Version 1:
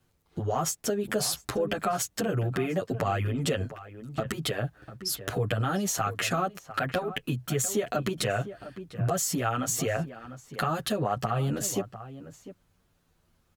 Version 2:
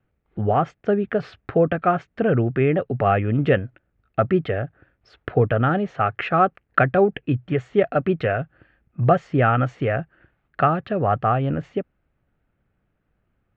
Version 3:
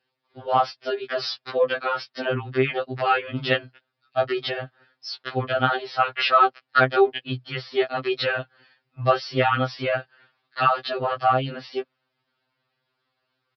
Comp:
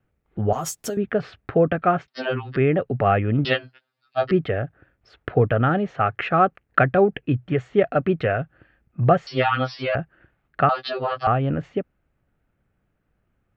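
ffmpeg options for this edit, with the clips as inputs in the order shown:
-filter_complex "[2:a]asplit=4[s0][s1][s2][s3];[1:a]asplit=6[s4][s5][s6][s7][s8][s9];[s4]atrim=end=0.532[s10];[0:a]atrim=start=0.528:end=0.972[s11];[s5]atrim=start=0.968:end=2.082[s12];[s0]atrim=start=2.078:end=2.562[s13];[s6]atrim=start=2.558:end=3.452[s14];[s1]atrim=start=3.448:end=4.312[s15];[s7]atrim=start=4.308:end=9.272[s16];[s2]atrim=start=9.268:end=9.952[s17];[s8]atrim=start=9.948:end=10.692[s18];[s3]atrim=start=10.688:end=11.272[s19];[s9]atrim=start=11.268[s20];[s10][s11]acrossfade=d=0.004:c1=hsin:c2=hsin[s21];[s21][s12]acrossfade=d=0.004:c1=hsin:c2=hsin[s22];[s22][s13]acrossfade=d=0.004:c1=hsin:c2=hsin[s23];[s23][s14]acrossfade=d=0.004:c1=hsin:c2=hsin[s24];[s24][s15]acrossfade=d=0.004:c1=hsin:c2=hsin[s25];[s25][s16]acrossfade=d=0.004:c1=hsin:c2=hsin[s26];[s26][s17]acrossfade=d=0.004:c1=hsin:c2=hsin[s27];[s27][s18]acrossfade=d=0.004:c1=hsin:c2=hsin[s28];[s28][s19]acrossfade=d=0.004:c1=hsin:c2=hsin[s29];[s29][s20]acrossfade=d=0.004:c1=hsin:c2=hsin"

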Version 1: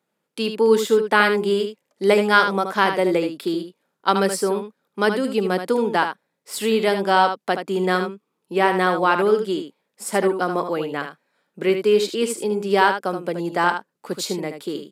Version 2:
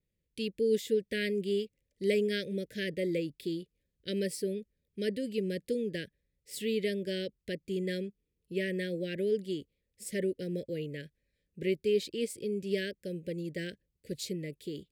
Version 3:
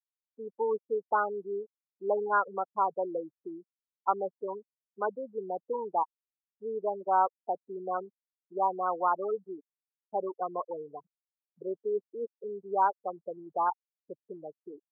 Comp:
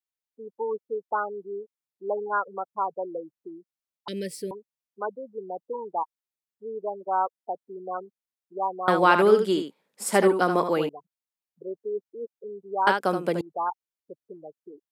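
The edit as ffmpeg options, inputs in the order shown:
-filter_complex "[0:a]asplit=2[s0][s1];[2:a]asplit=4[s2][s3][s4][s5];[s2]atrim=end=4.082[s6];[1:a]atrim=start=4.078:end=4.512[s7];[s3]atrim=start=4.508:end=8.882[s8];[s0]atrim=start=8.878:end=10.892[s9];[s4]atrim=start=10.888:end=12.872[s10];[s1]atrim=start=12.868:end=13.412[s11];[s5]atrim=start=13.408[s12];[s6][s7]acrossfade=d=0.004:c1=hsin:c2=hsin[s13];[s13][s8]acrossfade=d=0.004:c1=hsin:c2=hsin[s14];[s14][s9]acrossfade=d=0.004:c1=hsin:c2=hsin[s15];[s15][s10]acrossfade=d=0.004:c1=hsin:c2=hsin[s16];[s16][s11]acrossfade=d=0.004:c1=hsin:c2=hsin[s17];[s17][s12]acrossfade=d=0.004:c1=hsin:c2=hsin"

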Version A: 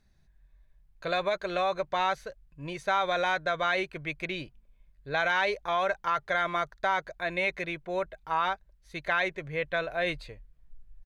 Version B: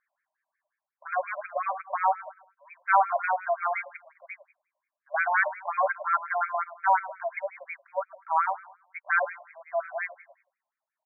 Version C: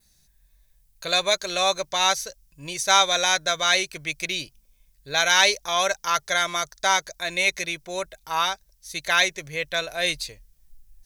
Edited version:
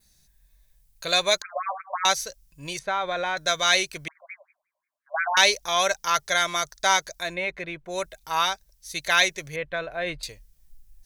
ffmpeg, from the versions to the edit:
-filter_complex "[1:a]asplit=2[s0][s1];[0:a]asplit=3[s2][s3][s4];[2:a]asplit=6[s5][s6][s7][s8][s9][s10];[s5]atrim=end=1.422[s11];[s0]atrim=start=1.418:end=2.052[s12];[s6]atrim=start=2.048:end=2.792[s13];[s2]atrim=start=2.788:end=3.372[s14];[s7]atrim=start=3.368:end=4.082[s15];[s1]atrim=start=4.078:end=5.372[s16];[s8]atrim=start=5.368:end=7.37[s17];[s3]atrim=start=7.21:end=8[s18];[s9]atrim=start=7.84:end=9.562[s19];[s4]atrim=start=9.558:end=10.232[s20];[s10]atrim=start=10.228[s21];[s11][s12]acrossfade=d=0.004:c1=hsin:c2=hsin[s22];[s22][s13]acrossfade=d=0.004:c1=hsin:c2=hsin[s23];[s23][s14]acrossfade=d=0.004:c1=hsin:c2=hsin[s24];[s24][s15]acrossfade=d=0.004:c1=hsin:c2=hsin[s25];[s25][s16]acrossfade=d=0.004:c1=hsin:c2=hsin[s26];[s26][s17]acrossfade=d=0.004:c1=hsin:c2=hsin[s27];[s27][s18]acrossfade=d=0.16:c1=tri:c2=tri[s28];[s28][s19]acrossfade=d=0.16:c1=tri:c2=tri[s29];[s29][s20]acrossfade=d=0.004:c1=hsin:c2=hsin[s30];[s30][s21]acrossfade=d=0.004:c1=hsin:c2=hsin"

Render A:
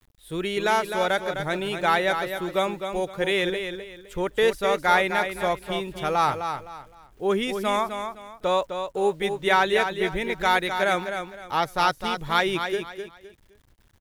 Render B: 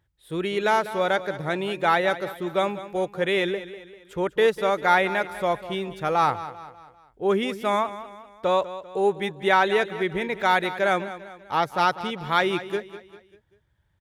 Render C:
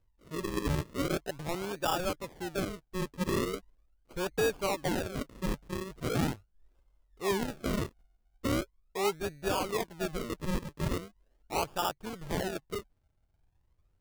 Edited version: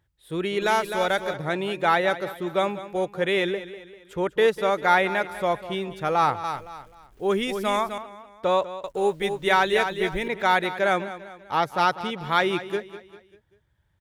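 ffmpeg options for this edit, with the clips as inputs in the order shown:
-filter_complex "[0:a]asplit=3[s0][s1][s2];[1:a]asplit=4[s3][s4][s5][s6];[s3]atrim=end=0.622[s7];[s0]atrim=start=0.618:end=1.342[s8];[s4]atrim=start=1.338:end=6.442[s9];[s1]atrim=start=6.438:end=7.982[s10];[s5]atrim=start=7.978:end=8.842[s11];[s2]atrim=start=8.838:end=10.282[s12];[s6]atrim=start=10.278[s13];[s7][s8]acrossfade=d=0.004:c1=hsin:c2=hsin[s14];[s14][s9]acrossfade=d=0.004:c1=hsin:c2=hsin[s15];[s15][s10]acrossfade=d=0.004:c1=hsin:c2=hsin[s16];[s16][s11]acrossfade=d=0.004:c1=hsin:c2=hsin[s17];[s17][s12]acrossfade=d=0.004:c1=hsin:c2=hsin[s18];[s18][s13]acrossfade=d=0.004:c1=hsin:c2=hsin"

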